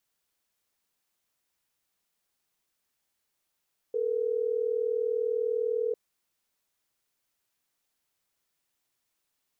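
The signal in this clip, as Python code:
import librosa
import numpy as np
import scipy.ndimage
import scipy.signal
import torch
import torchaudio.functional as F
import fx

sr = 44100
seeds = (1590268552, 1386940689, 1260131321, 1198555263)

y = fx.call_progress(sr, length_s=3.12, kind='ringback tone', level_db=-28.5)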